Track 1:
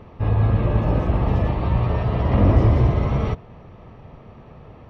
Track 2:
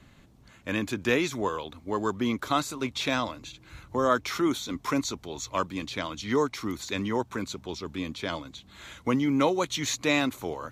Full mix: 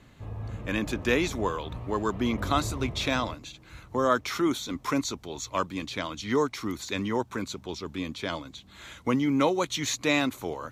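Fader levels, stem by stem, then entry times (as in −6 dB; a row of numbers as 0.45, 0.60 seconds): −18.5, 0.0 decibels; 0.00, 0.00 seconds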